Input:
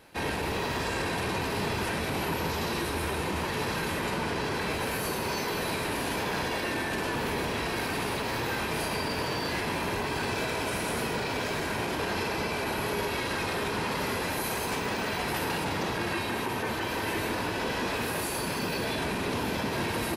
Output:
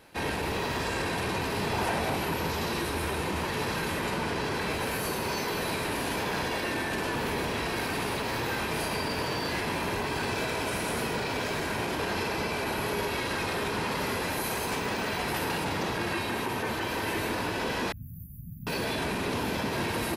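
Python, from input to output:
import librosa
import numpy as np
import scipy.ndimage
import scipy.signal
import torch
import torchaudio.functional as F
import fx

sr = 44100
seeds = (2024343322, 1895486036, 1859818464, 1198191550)

y = fx.peak_eq(x, sr, hz=750.0, db=7.5, octaves=0.82, at=(1.73, 2.15))
y = fx.cheby2_bandstop(y, sr, low_hz=400.0, high_hz=8200.0, order=4, stop_db=50, at=(17.92, 18.67))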